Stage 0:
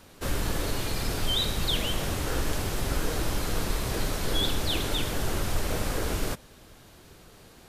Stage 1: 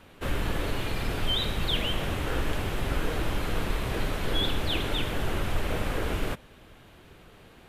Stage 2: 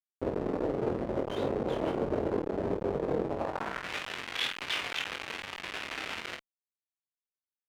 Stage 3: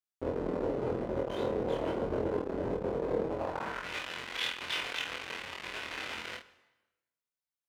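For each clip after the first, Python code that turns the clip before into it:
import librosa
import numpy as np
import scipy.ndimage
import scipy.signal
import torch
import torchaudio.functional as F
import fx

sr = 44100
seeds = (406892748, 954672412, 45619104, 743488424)

y1 = fx.high_shelf_res(x, sr, hz=3900.0, db=-8.0, q=1.5)
y2 = fx.schmitt(y1, sr, flips_db=-30.0)
y2 = fx.filter_sweep_bandpass(y2, sr, from_hz=450.0, to_hz=2500.0, start_s=3.29, end_s=3.92, q=1.5)
y2 = fx.room_early_taps(y2, sr, ms=(22, 50), db=(-5.0, -7.5))
y2 = y2 * 10.0 ** (5.0 / 20.0)
y3 = fx.doubler(y2, sr, ms=24.0, db=-2.5)
y3 = fx.rev_plate(y3, sr, seeds[0], rt60_s=1.1, hf_ratio=0.85, predelay_ms=80, drr_db=18.0)
y3 = y3 * 10.0 ** (-3.5 / 20.0)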